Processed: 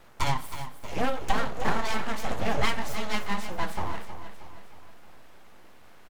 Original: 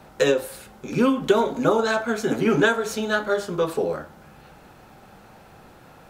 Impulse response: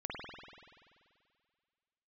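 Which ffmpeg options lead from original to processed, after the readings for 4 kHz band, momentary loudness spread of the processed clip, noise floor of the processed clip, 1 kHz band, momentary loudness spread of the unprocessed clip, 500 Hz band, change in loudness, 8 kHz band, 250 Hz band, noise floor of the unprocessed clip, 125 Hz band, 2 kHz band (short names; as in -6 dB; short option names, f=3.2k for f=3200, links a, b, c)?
-3.0 dB, 14 LU, -48 dBFS, -2.5 dB, 9 LU, -14.0 dB, -8.5 dB, -5.0 dB, -12.0 dB, -49 dBFS, -3.0 dB, -7.0 dB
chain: -filter_complex "[0:a]aeval=exprs='abs(val(0))':c=same,aecho=1:1:316|632|948|1264|1580:0.282|0.138|0.0677|0.0332|0.0162,asplit=2[a][b];[1:a]atrim=start_sample=2205[c];[b][c]afir=irnorm=-1:irlink=0,volume=-21dB[d];[a][d]amix=inputs=2:normalize=0,volume=-5dB"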